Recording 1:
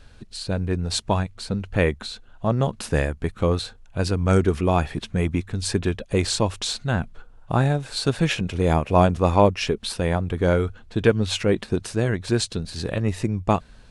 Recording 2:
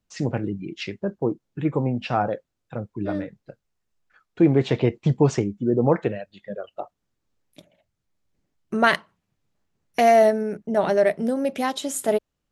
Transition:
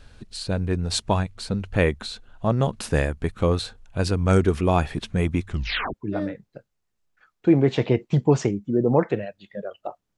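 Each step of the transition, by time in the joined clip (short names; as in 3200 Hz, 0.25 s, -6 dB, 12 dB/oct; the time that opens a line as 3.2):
recording 1
5.47 tape stop 0.47 s
5.94 switch to recording 2 from 2.87 s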